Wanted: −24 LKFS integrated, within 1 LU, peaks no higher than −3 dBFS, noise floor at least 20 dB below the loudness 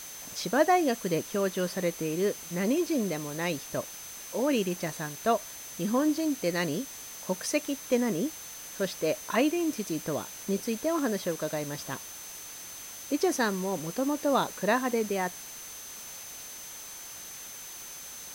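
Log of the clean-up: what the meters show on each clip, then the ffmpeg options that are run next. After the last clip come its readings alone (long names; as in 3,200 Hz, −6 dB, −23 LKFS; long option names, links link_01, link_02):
interfering tone 6,200 Hz; level of the tone −44 dBFS; background noise floor −43 dBFS; target noise floor −51 dBFS; integrated loudness −30.5 LKFS; sample peak −11.5 dBFS; target loudness −24.0 LKFS
→ -af "bandreject=frequency=6200:width=30"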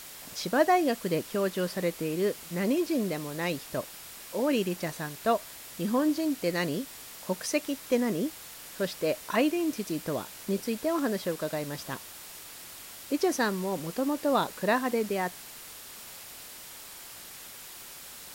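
interfering tone none found; background noise floor −46 dBFS; target noise floor −50 dBFS
→ -af "afftdn=noise_reduction=6:noise_floor=-46"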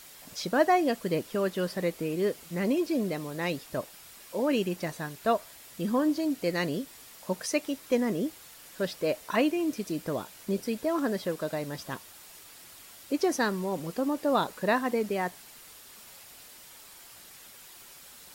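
background noise floor −51 dBFS; integrated loudness −30.0 LKFS; sample peak −11.5 dBFS; target loudness −24.0 LKFS
→ -af "volume=6dB"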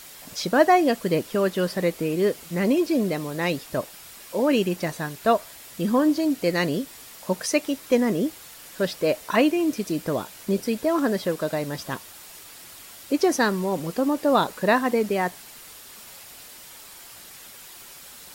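integrated loudness −24.0 LKFS; sample peak −5.5 dBFS; background noise floor −45 dBFS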